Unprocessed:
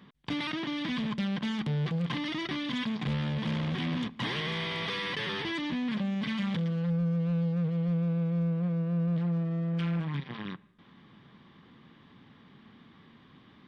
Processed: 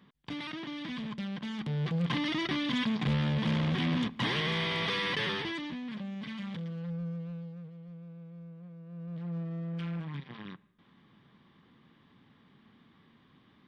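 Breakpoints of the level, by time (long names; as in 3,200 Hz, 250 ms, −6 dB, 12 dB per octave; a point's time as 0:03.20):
0:01.47 −6 dB
0:02.14 +2 dB
0:05.25 +2 dB
0:05.81 −8 dB
0:07.09 −8 dB
0:07.78 −18.5 dB
0:08.80 −18.5 dB
0:09.37 −6 dB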